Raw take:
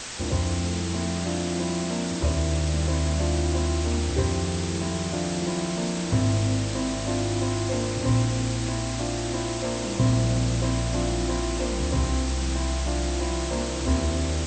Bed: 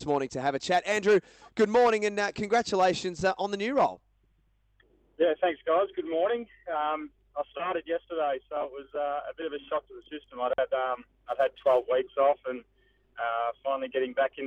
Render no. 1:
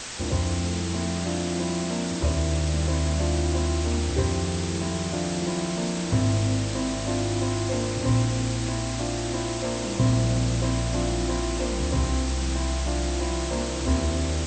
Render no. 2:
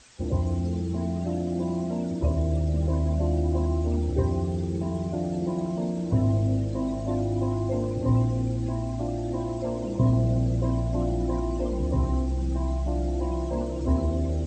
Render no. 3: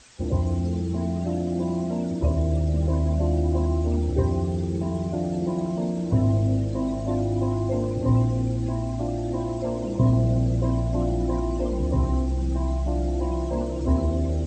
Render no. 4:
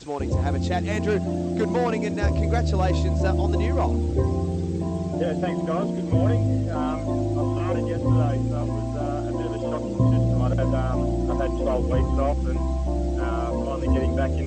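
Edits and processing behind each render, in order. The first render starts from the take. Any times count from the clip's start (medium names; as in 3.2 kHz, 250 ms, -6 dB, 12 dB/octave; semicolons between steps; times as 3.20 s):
no audible change
noise reduction 19 dB, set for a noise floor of -29 dBFS
trim +2 dB
add bed -3 dB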